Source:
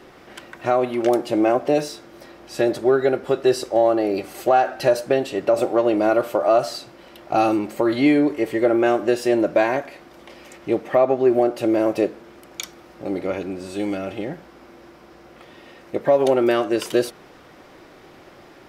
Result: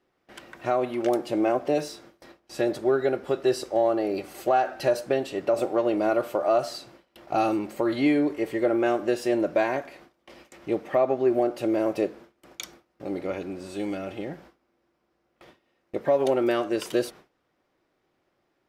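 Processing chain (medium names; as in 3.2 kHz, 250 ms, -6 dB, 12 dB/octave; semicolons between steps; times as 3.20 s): gate with hold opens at -33 dBFS; trim -5.5 dB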